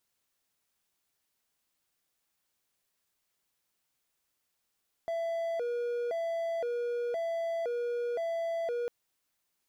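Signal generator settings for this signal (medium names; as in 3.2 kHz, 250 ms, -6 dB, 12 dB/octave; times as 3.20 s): siren hi-lo 479–667 Hz 0.97 per s triangle -28 dBFS 3.80 s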